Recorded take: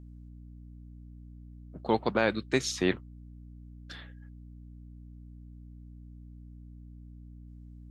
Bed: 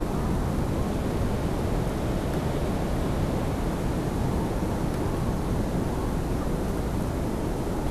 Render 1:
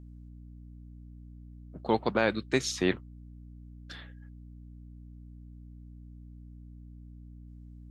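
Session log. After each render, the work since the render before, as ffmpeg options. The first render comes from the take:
-af anull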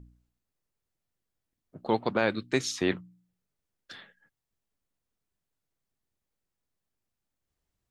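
-af "bandreject=f=60:t=h:w=4,bandreject=f=120:t=h:w=4,bandreject=f=180:t=h:w=4,bandreject=f=240:t=h:w=4,bandreject=f=300:t=h:w=4"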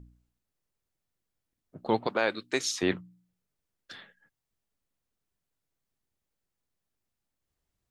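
-filter_complex "[0:a]asettb=1/sr,asplit=3[a][b][c];[a]atrim=end=2.074[d];[b]atrim=start=2.07:end=2.83,asetpts=PTS-STARTPTS,afade=t=in:d=0.004:c=qsin,afade=t=out:st=0.756:d=0.004:c=qsin,bass=f=250:g=-14,treble=f=4k:g=3[e];[c]atrim=start=2.826[f];[d][e]acrossfade=d=0.004:c1=hsin:c2=qsin[g];[g][f]acrossfade=d=0.004:c1=qsin:c2=hsin"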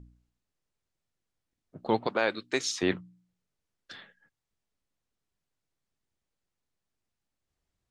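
-af "lowpass=8.3k"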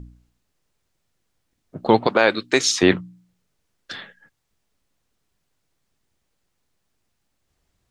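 -af "volume=12dB,alimiter=limit=-3dB:level=0:latency=1"

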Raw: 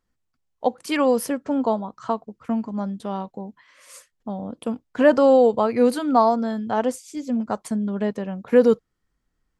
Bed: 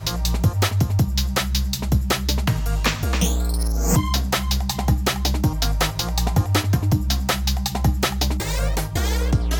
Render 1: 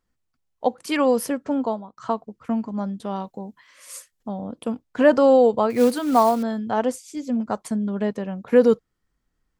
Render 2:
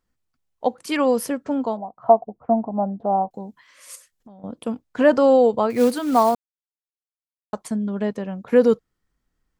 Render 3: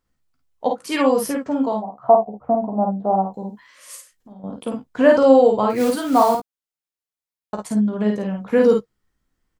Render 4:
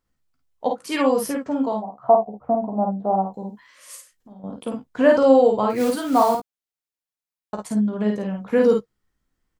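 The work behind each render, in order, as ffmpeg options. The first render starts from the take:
-filter_complex "[0:a]asettb=1/sr,asplit=3[a][b][c];[a]atrim=end=3.164[d];[b]atrim=start=3.16:end=4.29,asetpts=PTS-STARTPTS,afade=t=in:d=0.004:c=qsin,afade=t=out:st=1.126:d=0.004:c=qsin,aemphasis=mode=production:type=cd[e];[c]atrim=start=4.286[f];[d][e]acrossfade=d=0.004:c1=hsin:c2=qsin[g];[g][f]acrossfade=d=0.004:c1=qsin:c2=hsin,asettb=1/sr,asplit=3[h][i][j];[h]atrim=end=5.704[k];[i]atrim=start=5.7:end=6.43,asetpts=PTS-STARTPTS,afade=t=in:d=0.004:c=qsin,afade=t=out:st=0.726:d=0.004:c=qsin,acrusher=bits=5:mode=log:mix=0:aa=0.000001[l];[j]atrim=start=6.426[m];[k][l]acrossfade=d=0.004:c1=hsin:c2=qsin[n];[n][m]acrossfade=d=0.004:c1=qsin:c2=hsin,asplit=2[o][p];[o]atrim=end=1.97,asetpts=PTS-STARTPTS,afade=t=out:st=1.52:d=0.45:silence=0.16788[q];[p]atrim=start=1.97,asetpts=PTS-STARTPTS,afade=t=in:d=0.004:c=hsin:silence=0.16788[r];[q][r]concat=n=2:v=0:a=1"
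-filter_complex "[0:a]asettb=1/sr,asplit=3[a][b][c];[a]atrim=end=1.774[d];[b]atrim=start=1.77:end=3.31,asetpts=PTS-STARTPTS,afade=t=in:d=0.004:c=qsin,afade=t=out:st=1.536:d=0.004:c=qsin,lowpass=f=730:t=q:w=6.9[e];[c]atrim=start=3.306[f];[d][e]acrossfade=d=0.004:c1=hsin:c2=qsin[g];[g][f]acrossfade=d=0.004:c1=qsin:c2=hsin,asettb=1/sr,asplit=3[h][i][j];[h]atrim=end=3.954[k];[i]atrim=start=3.95:end=4.44,asetpts=PTS-STARTPTS,afade=t=in:d=0.004:c=qsin,afade=t=out:st=0.486:d=0.004:c=qsin,acompressor=threshold=-42dB:ratio=12:attack=3.2:release=140:knee=1:detection=peak[l];[j]atrim=start=4.436[m];[k][l]acrossfade=d=0.004:c1=hsin:c2=qsin[n];[n][m]acrossfade=d=0.004:c1=qsin:c2=hsin,asplit=3[o][p][q];[o]atrim=end=6.35,asetpts=PTS-STARTPTS,afade=t=out:st=6.346:d=0.004:c=hsin[r];[p]atrim=start=6.35:end=7.53,asetpts=PTS-STARTPTS,volume=0[s];[q]atrim=start=7.53,asetpts=PTS-STARTPTS,afade=t=in:d=0.004:c=hsin[t];[r][s][t]concat=n=3:v=0:a=1"
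-filter_complex "[0:a]asplit=2[a][b];[b]adelay=15,volume=-8dB[c];[a][c]amix=inputs=2:normalize=0,aecho=1:1:38|52:0.299|0.668"
-af "volume=-2dB"

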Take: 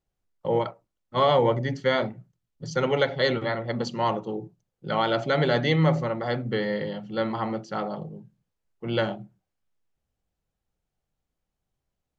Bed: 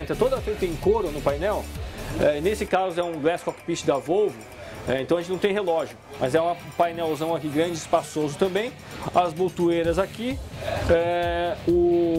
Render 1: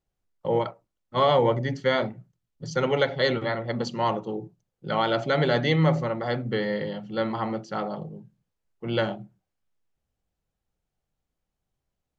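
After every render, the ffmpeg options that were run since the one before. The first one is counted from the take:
-af anull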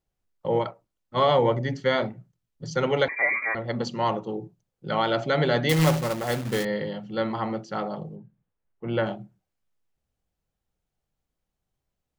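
-filter_complex "[0:a]asettb=1/sr,asplit=3[a][b][c];[a]atrim=end=3.084[d];[b]atrim=start=3.08:end=3.55,asetpts=PTS-STARTPTS,afade=t=in:d=0.004:c=qsin,afade=t=out:st=0.466:d=0.004:c=qsin,lowpass=f=2.1k:t=q:w=0.5098,lowpass=f=2.1k:t=q:w=0.6013,lowpass=f=2.1k:t=q:w=0.9,lowpass=f=2.1k:t=q:w=2.563,afreqshift=-2500[e];[c]atrim=start=3.546[f];[d][e]acrossfade=d=0.004:c1=hsin:c2=qsin[g];[g][f]acrossfade=d=0.004:c1=qsin:c2=hsin,asettb=1/sr,asplit=3[h][i][j];[h]atrim=end=5.694[k];[i]atrim=start=5.69:end=6.65,asetpts=PTS-STARTPTS,afade=t=in:d=0.004:c=qsin,afade=t=out:st=0.956:d=0.004:c=qsin,acrusher=bits=2:mode=log:mix=0:aa=0.000001[l];[j]atrim=start=6.646[m];[k][l]acrossfade=d=0.004:c1=hsin:c2=qsin[n];[n][m]acrossfade=d=0.004:c1=qsin:c2=hsin,asplit=3[o][p][q];[o]afade=t=out:st=8.15:d=0.02[r];[p]lowpass=2.3k,afade=t=in:st=8.15:d=0.02,afade=t=out:st=9.05:d=0.02[s];[q]afade=t=in:st=9.05:d=0.02[t];[r][s][t]amix=inputs=3:normalize=0"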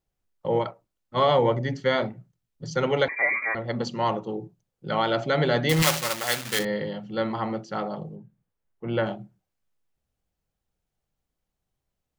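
-filter_complex "[0:a]asettb=1/sr,asplit=3[a][b][c];[a]atrim=end=5.824[d];[b]atrim=start=5.82:end=6.59,asetpts=PTS-STARTPTS,afade=t=in:d=0.004:c=qsin,afade=t=out:st=0.766:d=0.004:c=qsin,tiltshelf=f=900:g=-10[e];[c]atrim=start=6.586[f];[d][e]acrossfade=d=0.004:c1=hsin:c2=qsin[g];[g][f]acrossfade=d=0.004:c1=qsin:c2=hsin"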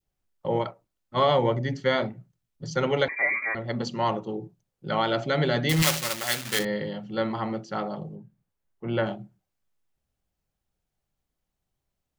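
-af "bandreject=f=480:w=16,adynamicequalizer=threshold=0.0178:dfrequency=900:dqfactor=0.84:tfrequency=900:tqfactor=0.84:attack=5:release=100:ratio=0.375:range=2.5:mode=cutabove:tftype=bell"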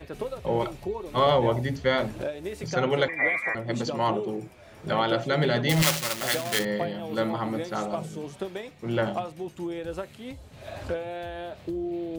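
-filter_complex "[1:a]volume=-11.5dB[a];[0:a][a]amix=inputs=2:normalize=0"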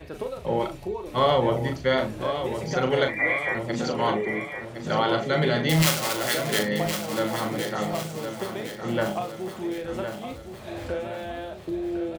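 -filter_complex "[0:a]asplit=2[a][b];[b]adelay=38,volume=-7dB[c];[a][c]amix=inputs=2:normalize=0,aecho=1:1:1063|2126|3189|4252|5315:0.376|0.18|0.0866|0.0416|0.02"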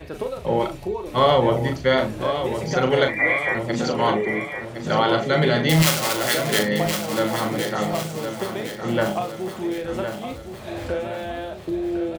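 -af "volume=4dB,alimiter=limit=-3dB:level=0:latency=1"

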